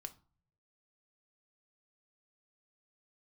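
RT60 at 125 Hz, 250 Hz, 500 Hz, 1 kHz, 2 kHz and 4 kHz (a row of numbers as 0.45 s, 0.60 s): 1.0 s, 0.70 s, 0.40 s, 0.45 s, 0.30 s, 0.25 s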